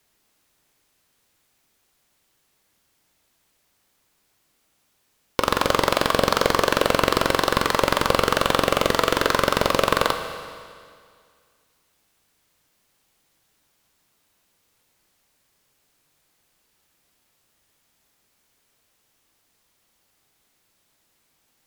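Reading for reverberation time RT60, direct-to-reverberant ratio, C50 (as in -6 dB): 2.1 s, 6.5 dB, 7.5 dB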